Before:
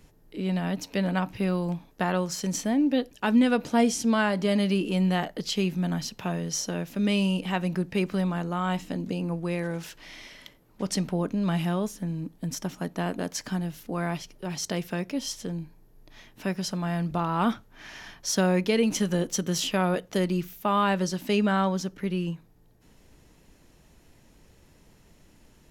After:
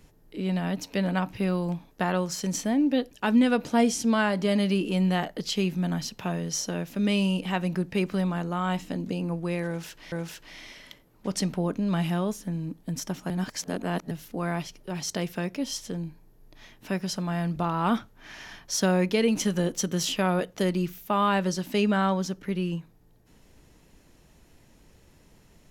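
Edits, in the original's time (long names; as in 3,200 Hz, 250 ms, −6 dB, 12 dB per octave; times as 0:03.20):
0:09.67–0:10.12: repeat, 2 plays
0:12.85–0:13.66: reverse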